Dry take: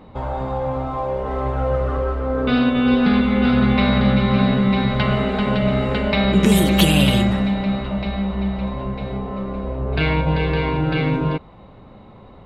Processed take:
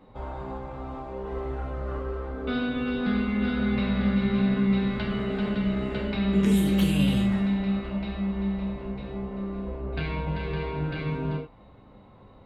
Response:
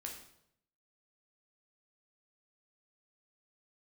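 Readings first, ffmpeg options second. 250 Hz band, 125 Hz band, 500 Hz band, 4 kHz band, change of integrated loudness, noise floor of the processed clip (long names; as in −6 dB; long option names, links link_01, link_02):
−7.0 dB, −8.5 dB, −10.0 dB, −13.0 dB, −8.5 dB, −52 dBFS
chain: -filter_complex "[0:a]acrossover=split=330[link_01][link_02];[link_02]acompressor=threshold=-22dB:ratio=6[link_03];[link_01][link_03]amix=inputs=2:normalize=0[link_04];[1:a]atrim=start_sample=2205,afade=type=out:start_time=0.15:duration=0.01,atrim=end_sample=7056[link_05];[link_04][link_05]afir=irnorm=-1:irlink=0,volume=-5.5dB"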